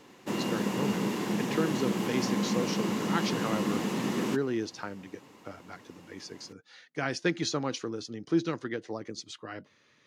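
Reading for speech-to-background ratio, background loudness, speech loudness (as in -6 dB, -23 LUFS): -3.5 dB, -31.0 LUFS, -34.5 LUFS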